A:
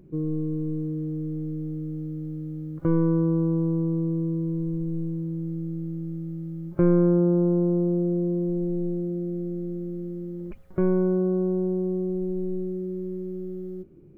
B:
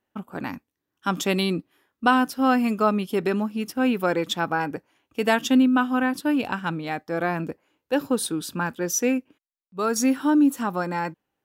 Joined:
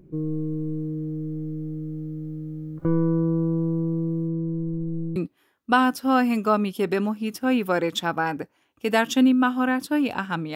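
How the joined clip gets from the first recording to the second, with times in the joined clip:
A
4.27–5.16 LPF 2000 Hz -> 1100 Hz
5.16 switch to B from 1.5 s

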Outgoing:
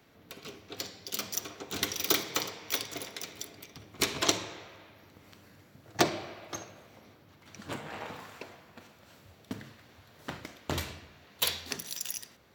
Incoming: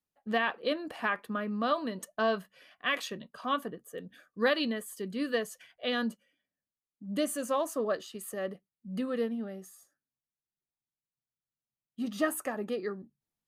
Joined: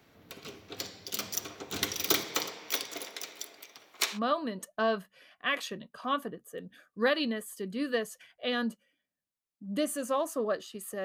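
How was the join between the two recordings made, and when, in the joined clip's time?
outgoing
2.24–4.2 HPF 160 Hz -> 820 Hz
4.16 switch to incoming from 1.56 s, crossfade 0.08 s

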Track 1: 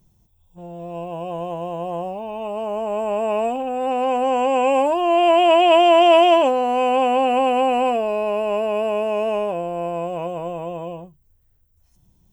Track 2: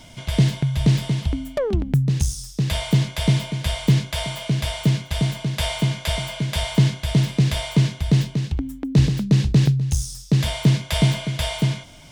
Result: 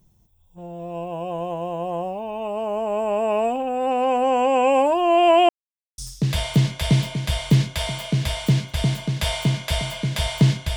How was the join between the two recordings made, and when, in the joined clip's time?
track 1
5.49–5.98 mute
5.98 switch to track 2 from 2.35 s

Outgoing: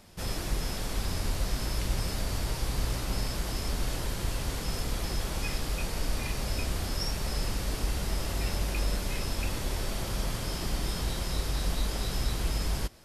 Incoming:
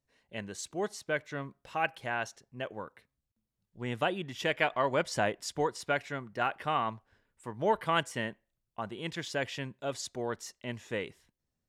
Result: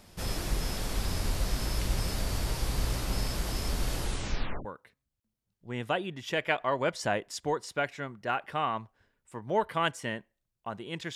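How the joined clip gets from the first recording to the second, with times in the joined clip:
outgoing
4 tape stop 0.65 s
4.65 switch to incoming from 2.77 s

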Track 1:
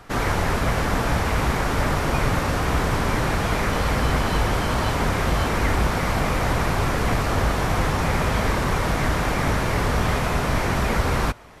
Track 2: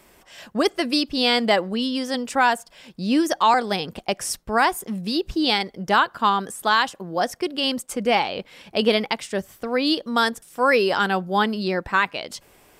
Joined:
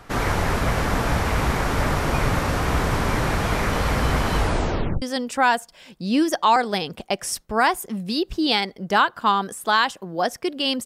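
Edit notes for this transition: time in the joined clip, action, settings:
track 1
4.38 tape stop 0.64 s
5.02 switch to track 2 from 2 s

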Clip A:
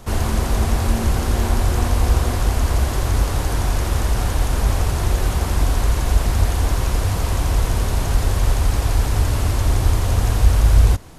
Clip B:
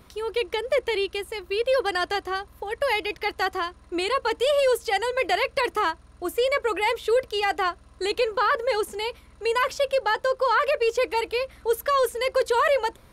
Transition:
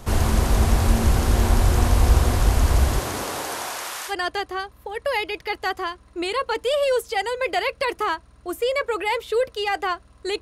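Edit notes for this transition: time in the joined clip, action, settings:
clip A
2.98–4.14 HPF 170 Hz -> 1500 Hz
4.1 switch to clip B from 1.86 s, crossfade 0.08 s

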